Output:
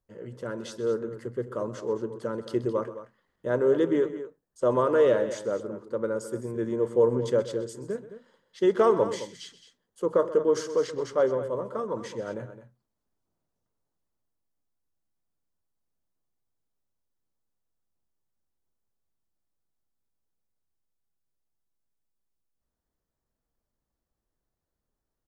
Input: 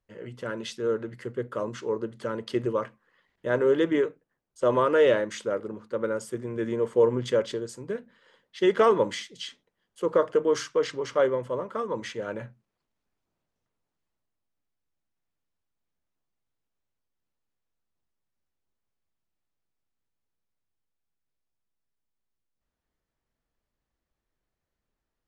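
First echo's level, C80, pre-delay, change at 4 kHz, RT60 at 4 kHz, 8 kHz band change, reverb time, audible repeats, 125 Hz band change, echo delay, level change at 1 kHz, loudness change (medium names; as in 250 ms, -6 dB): -15.5 dB, no reverb, no reverb, -6.0 dB, no reverb, -1.5 dB, no reverb, 2, +0.5 dB, 128 ms, -2.0 dB, -0.5 dB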